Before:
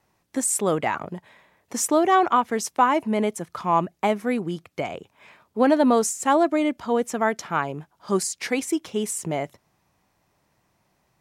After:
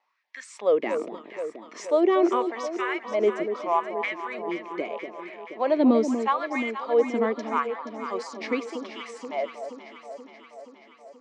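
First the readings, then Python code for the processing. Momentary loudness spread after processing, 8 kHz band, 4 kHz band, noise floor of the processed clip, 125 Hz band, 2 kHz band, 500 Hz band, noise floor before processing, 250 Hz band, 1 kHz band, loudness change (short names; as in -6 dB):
20 LU, under -15 dB, -5.5 dB, -53 dBFS, under -15 dB, -2.5 dB, 0.0 dB, -70 dBFS, -3.0 dB, -6.0 dB, -3.0 dB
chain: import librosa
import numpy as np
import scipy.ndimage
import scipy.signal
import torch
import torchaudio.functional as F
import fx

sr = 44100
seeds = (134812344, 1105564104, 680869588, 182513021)

y = fx.cabinet(x, sr, low_hz=110.0, low_slope=12, high_hz=5000.0, hz=(120.0, 220.0, 800.0, 1500.0, 2200.0), db=(-8, 8, -9, -7, 4))
y = fx.filter_lfo_highpass(y, sr, shape='sine', hz=0.8, low_hz=300.0, high_hz=1800.0, q=4.4)
y = fx.echo_alternate(y, sr, ms=239, hz=930.0, feedback_pct=80, wet_db=-7.5)
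y = F.gain(torch.from_numpy(y), -6.5).numpy()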